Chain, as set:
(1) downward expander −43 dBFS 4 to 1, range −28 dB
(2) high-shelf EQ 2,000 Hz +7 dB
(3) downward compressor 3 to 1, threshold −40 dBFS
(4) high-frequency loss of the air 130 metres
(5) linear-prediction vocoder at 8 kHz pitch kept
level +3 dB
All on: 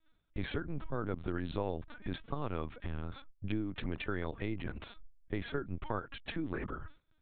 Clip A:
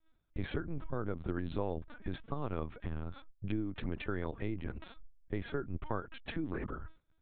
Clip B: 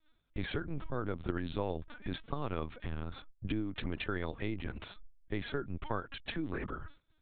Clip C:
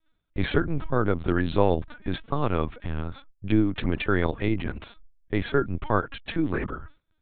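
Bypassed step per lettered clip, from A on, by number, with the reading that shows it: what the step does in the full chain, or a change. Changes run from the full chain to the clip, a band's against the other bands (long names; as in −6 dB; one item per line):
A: 2, 4 kHz band −4.0 dB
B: 4, 4 kHz band +2.5 dB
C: 3, average gain reduction 9.5 dB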